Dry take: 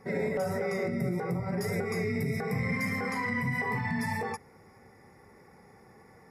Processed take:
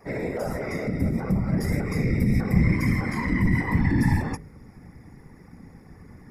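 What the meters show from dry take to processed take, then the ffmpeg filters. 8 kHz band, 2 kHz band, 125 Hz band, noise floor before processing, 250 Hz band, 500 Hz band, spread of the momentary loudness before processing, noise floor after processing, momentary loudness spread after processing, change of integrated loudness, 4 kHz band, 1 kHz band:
+2.0 dB, +1.5 dB, +10.5 dB, -57 dBFS, +9.0 dB, 0.0 dB, 2 LU, -49 dBFS, 8 LU, +6.5 dB, +2.0 dB, 0.0 dB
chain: -af "asubboost=boost=7.5:cutoff=200,afftfilt=real='hypot(re,im)*cos(2*PI*random(0))':imag='hypot(re,im)*sin(2*PI*random(1))':win_size=512:overlap=0.75,bandreject=f=51.64:t=h:w=4,bandreject=f=103.28:t=h:w=4,bandreject=f=154.92:t=h:w=4,bandreject=f=206.56:t=h:w=4,bandreject=f=258.2:t=h:w=4,bandreject=f=309.84:t=h:w=4,bandreject=f=361.48:t=h:w=4,bandreject=f=413.12:t=h:w=4,bandreject=f=464.76:t=h:w=4,bandreject=f=516.4:t=h:w=4,bandreject=f=568.04:t=h:w=4,volume=8dB"

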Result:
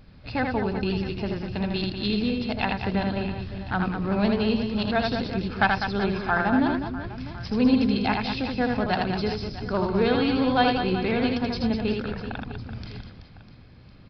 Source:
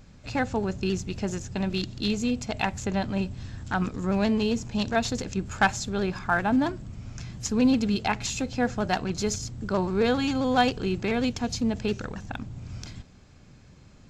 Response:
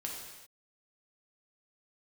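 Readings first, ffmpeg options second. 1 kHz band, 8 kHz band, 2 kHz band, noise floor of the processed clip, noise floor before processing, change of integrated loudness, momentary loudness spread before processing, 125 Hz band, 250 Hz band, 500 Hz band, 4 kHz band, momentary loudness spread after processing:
+2.0 dB, under -20 dB, +2.0 dB, -48 dBFS, -52 dBFS, +2.0 dB, 13 LU, +2.0 dB, +2.0 dB, +2.0 dB, +2.0 dB, 12 LU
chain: -filter_complex "[0:a]asplit=2[a][b];[b]aecho=0:1:80|200|380|650|1055:0.631|0.398|0.251|0.158|0.1[c];[a][c]amix=inputs=2:normalize=0,aresample=11025,aresample=44100"

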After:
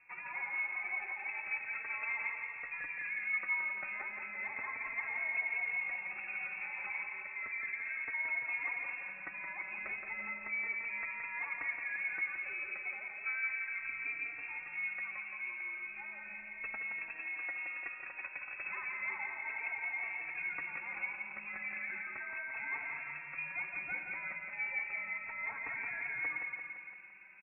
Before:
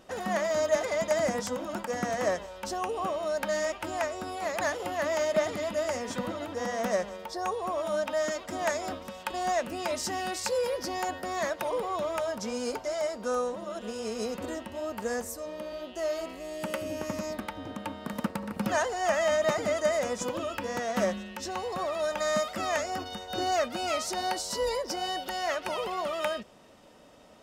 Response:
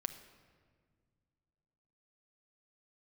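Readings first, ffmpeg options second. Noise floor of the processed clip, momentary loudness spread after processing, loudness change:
-48 dBFS, 7 LU, -6.5 dB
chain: -filter_complex "[0:a]highpass=f=160:p=1,equalizer=f=1.2k:t=o:w=0.77:g=-2.5,alimiter=limit=-20.5dB:level=0:latency=1:release=390,acompressor=threshold=-33dB:ratio=2.5,aecho=1:1:171|342|513|684|855|1026|1197|1368:0.531|0.319|0.191|0.115|0.0688|0.0413|0.0248|0.0149[a];[1:a]atrim=start_sample=2205,asetrate=22491,aresample=44100[b];[a][b]afir=irnorm=-1:irlink=0,lowpass=f=2.4k:t=q:w=0.5098,lowpass=f=2.4k:t=q:w=0.6013,lowpass=f=2.4k:t=q:w=0.9,lowpass=f=2.4k:t=q:w=2.563,afreqshift=-2800,asplit=2[c][d];[d]adelay=3.7,afreqshift=0.34[e];[c][e]amix=inputs=2:normalize=1,volume=-5.5dB"

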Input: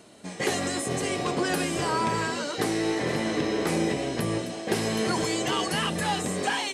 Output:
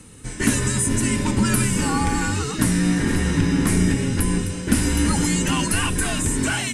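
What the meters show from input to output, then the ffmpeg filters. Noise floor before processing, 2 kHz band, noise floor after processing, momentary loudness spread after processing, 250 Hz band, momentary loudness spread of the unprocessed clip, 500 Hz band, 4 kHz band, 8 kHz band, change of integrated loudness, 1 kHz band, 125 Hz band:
-38 dBFS, +4.5 dB, -32 dBFS, 3 LU, +8.5 dB, 3 LU, -2.0 dB, +2.0 dB, +10.5 dB, +6.5 dB, +0.5 dB, +12.5 dB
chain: -af "afreqshift=-150,equalizer=f=100:t=o:w=0.67:g=8,equalizer=f=250:t=o:w=0.67:g=5,equalizer=f=630:t=o:w=0.67:g=-12,equalizer=f=4k:t=o:w=0.67:g=-6,equalizer=f=10k:t=o:w=0.67:g=10,volume=5.5dB"

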